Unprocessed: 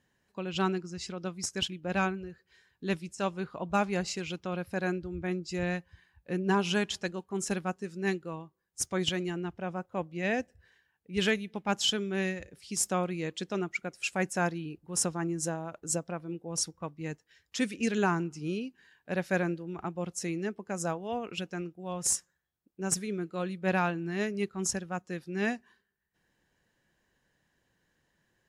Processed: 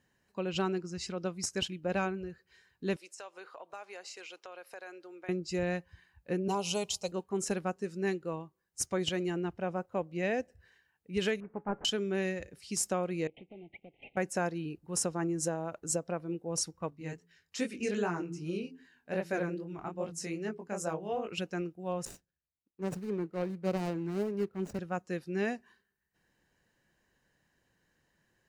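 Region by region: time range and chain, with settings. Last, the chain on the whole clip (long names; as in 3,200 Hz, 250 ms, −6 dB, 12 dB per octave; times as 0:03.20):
0:02.96–0:05.29: high-pass filter 450 Hz 24 dB per octave + downward compressor 4 to 1, threshold −44 dBFS
0:06.48–0:07.12: high-shelf EQ 4,800 Hz +9.5 dB + phaser with its sweep stopped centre 700 Hz, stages 4
0:11.40–0:11.85: variable-slope delta modulation 16 kbit/s + low-pass filter 1,500 Hz 24 dB per octave + tuned comb filter 140 Hz, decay 0.18 s, mix 40%
0:13.27–0:14.17: variable-slope delta modulation 16 kbit/s + Chebyshev band-stop filter 820–2,100 Hz, order 4 + downward compressor 3 to 1, threshold −52 dBFS
0:16.90–0:21.32: hum removal 84.46 Hz, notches 5 + chorus effect 2.5 Hz, delay 17.5 ms, depth 7.1 ms
0:22.05–0:24.79: running median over 41 samples + multiband upward and downward expander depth 40%
whole clip: notch filter 3,400 Hz, Q 13; dynamic equaliser 490 Hz, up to +6 dB, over −43 dBFS, Q 1.4; downward compressor 3 to 1, threshold −29 dBFS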